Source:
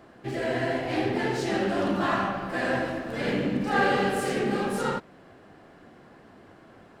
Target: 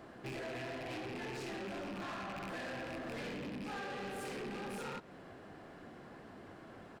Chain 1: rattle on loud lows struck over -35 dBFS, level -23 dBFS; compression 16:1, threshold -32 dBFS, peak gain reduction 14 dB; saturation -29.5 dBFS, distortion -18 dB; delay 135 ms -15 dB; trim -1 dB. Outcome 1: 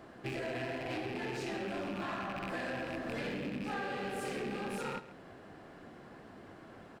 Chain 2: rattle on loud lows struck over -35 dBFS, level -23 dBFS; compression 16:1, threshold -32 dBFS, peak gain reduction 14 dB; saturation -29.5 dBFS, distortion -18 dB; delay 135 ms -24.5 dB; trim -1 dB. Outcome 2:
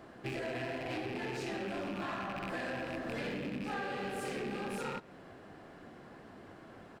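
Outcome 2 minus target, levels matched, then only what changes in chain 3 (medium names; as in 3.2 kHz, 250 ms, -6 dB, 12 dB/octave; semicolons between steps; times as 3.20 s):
saturation: distortion -9 dB
change: saturation -38.5 dBFS, distortion -9 dB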